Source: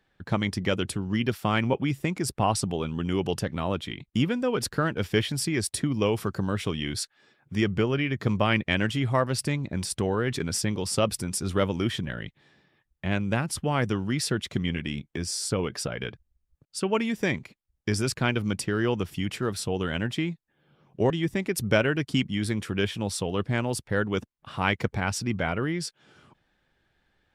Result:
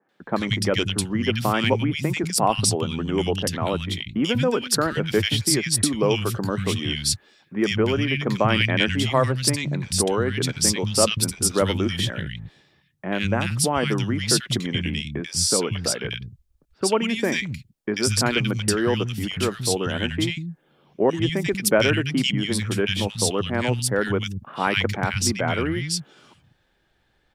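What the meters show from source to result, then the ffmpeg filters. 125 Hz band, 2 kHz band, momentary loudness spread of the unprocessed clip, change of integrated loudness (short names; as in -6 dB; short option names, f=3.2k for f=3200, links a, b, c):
+3.5 dB, +4.5 dB, 7 LU, +5.0 dB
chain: -filter_complex "[0:a]acrossover=split=180|1800[a][b][c];[c]adelay=90[d];[a]adelay=190[e];[e][b][d]amix=inputs=3:normalize=0,adynamicequalizer=threshold=0.00708:dfrequency=2200:dqfactor=0.7:tfrequency=2200:tqfactor=0.7:attack=5:release=100:ratio=0.375:range=2.5:mode=boostabove:tftype=highshelf,volume=5dB"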